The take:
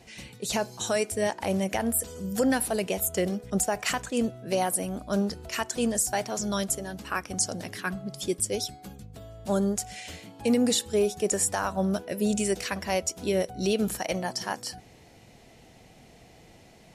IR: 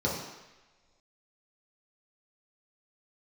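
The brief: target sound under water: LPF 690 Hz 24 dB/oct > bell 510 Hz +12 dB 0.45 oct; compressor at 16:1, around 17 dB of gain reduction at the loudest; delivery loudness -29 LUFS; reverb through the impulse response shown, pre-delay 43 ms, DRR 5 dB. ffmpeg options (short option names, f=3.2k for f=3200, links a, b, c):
-filter_complex "[0:a]acompressor=threshold=-37dB:ratio=16,asplit=2[a][b];[1:a]atrim=start_sample=2205,adelay=43[c];[b][c]afir=irnorm=-1:irlink=0,volume=-15dB[d];[a][d]amix=inputs=2:normalize=0,lowpass=f=690:w=0.5412,lowpass=f=690:w=1.3066,equalizer=f=510:t=o:w=0.45:g=12,volume=7.5dB"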